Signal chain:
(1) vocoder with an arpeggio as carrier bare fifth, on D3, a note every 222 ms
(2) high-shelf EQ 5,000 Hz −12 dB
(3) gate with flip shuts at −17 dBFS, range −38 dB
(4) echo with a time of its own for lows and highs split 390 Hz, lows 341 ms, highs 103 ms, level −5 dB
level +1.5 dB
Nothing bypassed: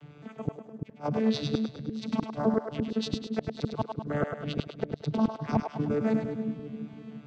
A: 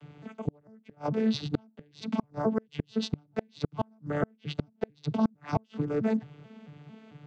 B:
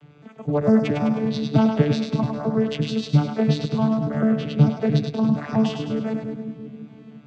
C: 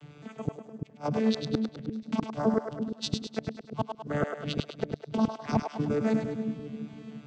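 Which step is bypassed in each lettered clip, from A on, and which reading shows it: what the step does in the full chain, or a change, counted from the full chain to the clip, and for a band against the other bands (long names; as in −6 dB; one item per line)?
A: 4, echo-to-direct ratio −3.5 dB to none audible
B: 3, change in momentary loudness spread +3 LU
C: 2, 4 kHz band +1.5 dB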